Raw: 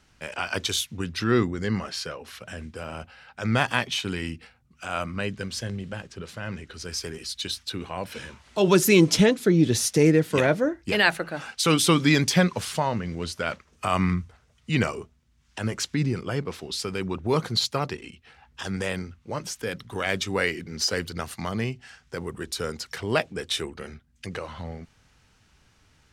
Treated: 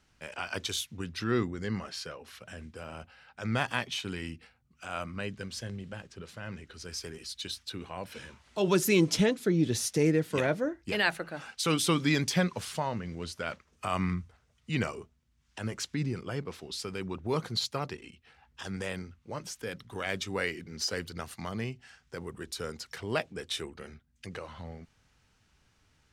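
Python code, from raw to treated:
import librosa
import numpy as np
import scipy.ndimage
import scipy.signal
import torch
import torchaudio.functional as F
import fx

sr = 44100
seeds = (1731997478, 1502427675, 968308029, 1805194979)

y = x * 10.0 ** (-7.0 / 20.0)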